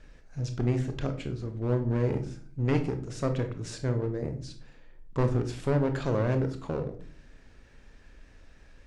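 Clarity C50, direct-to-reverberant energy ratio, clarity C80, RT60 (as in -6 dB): 11.0 dB, 6.5 dB, 16.0 dB, 0.45 s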